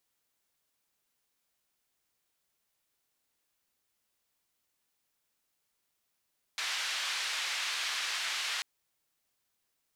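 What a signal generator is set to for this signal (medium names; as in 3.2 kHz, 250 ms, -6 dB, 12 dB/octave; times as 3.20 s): noise band 1.4–4 kHz, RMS -34.5 dBFS 2.04 s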